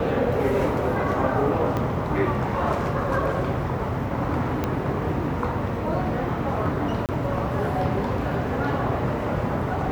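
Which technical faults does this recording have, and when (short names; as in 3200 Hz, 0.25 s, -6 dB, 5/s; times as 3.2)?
1.77 pop -14 dBFS
4.64 pop -11 dBFS
7.06–7.09 gap 28 ms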